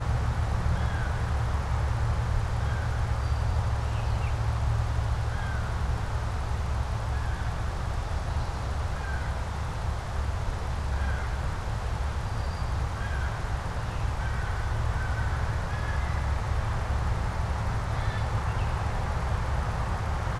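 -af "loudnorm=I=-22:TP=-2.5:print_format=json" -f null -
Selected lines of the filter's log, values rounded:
"input_i" : "-30.4",
"input_tp" : "-15.1",
"input_lra" : "3.0",
"input_thresh" : "-40.4",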